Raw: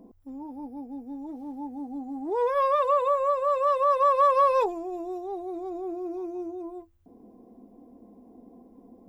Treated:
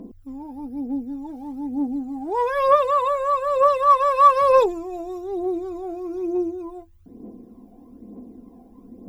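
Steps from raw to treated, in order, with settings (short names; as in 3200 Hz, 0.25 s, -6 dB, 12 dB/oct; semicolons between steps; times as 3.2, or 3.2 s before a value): phaser 1.1 Hz, delay 1.4 ms, feedback 55%; bell 760 Hz -6 dB 0.91 oct; gain +6.5 dB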